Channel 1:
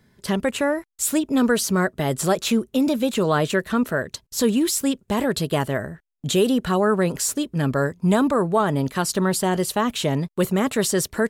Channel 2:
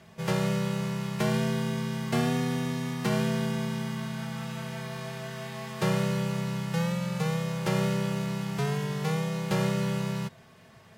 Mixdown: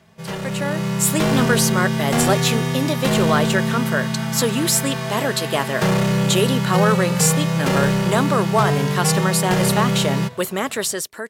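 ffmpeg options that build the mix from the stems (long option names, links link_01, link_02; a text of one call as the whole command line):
ffmpeg -i stem1.wav -i stem2.wav -filter_complex "[0:a]highpass=frequency=720:poles=1,volume=-6dB[link_01];[1:a]bandreject=frequency=123.1:width_type=h:width=4,bandreject=frequency=246.2:width_type=h:width=4,bandreject=frequency=369.3:width_type=h:width=4,bandreject=frequency=492.4:width_type=h:width=4,bandreject=frequency=615.5:width_type=h:width=4,bandreject=frequency=738.6:width_type=h:width=4,bandreject=frequency=861.7:width_type=h:width=4,bandreject=frequency=984.8:width_type=h:width=4,bandreject=frequency=1107.9:width_type=h:width=4,bandreject=frequency=1231:width_type=h:width=4,bandreject=frequency=1354.1:width_type=h:width=4,bandreject=frequency=1477.2:width_type=h:width=4,bandreject=frequency=1600.3:width_type=h:width=4,bandreject=frequency=1723.4:width_type=h:width=4,bandreject=frequency=1846.5:width_type=h:width=4,bandreject=frequency=1969.6:width_type=h:width=4,bandreject=frequency=2092.7:width_type=h:width=4,bandreject=frequency=2215.8:width_type=h:width=4,bandreject=frequency=2338.9:width_type=h:width=4,bandreject=frequency=2462:width_type=h:width=4,bandreject=frequency=2585.1:width_type=h:width=4,bandreject=frequency=2708.2:width_type=h:width=4,bandreject=frequency=2831.3:width_type=h:width=4,bandreject=frequency=2954.4:width_type=h:width=4,bandreject=frequency=3077.5:width_type=h:width=4,bandreject=frequency=3200.6:width_type=h:width=4,bandreject=frequency=3323.7:width_type=h:width=4,bandreject=frequency=3446.8:width_type=h:width=4,bandreject=frequency=3569.9:width_type=h:width=4,bandreject=frequency=3693:width_type=h:width=4,bandreject=frequency=3816.1:width_type=h:width=4,bandreject=frequency=3939.2:width_type=h:width=4,bandreject=frequency=4062.3:width_type=h:width=4,bandreject=frequency=4185.4:width_type=h:width=4,bandreject=frequency=4308.5:width_type=h:width=4,bandreject=frequency=4431.6:width_type=h:width=4,bandreject=frequency=4554.7:width_type=h:width=4,bandreject=frequency=4677.8:width_type=h:width=4,asoftclip=type=hard:threshold=-25.5dB,volume=0dB[link_02];[link_01][link_02]amix=inputs=2:normalize=0,dynaudnorm=framelen=220:gausssize=7:maxgain=12dB" out.wav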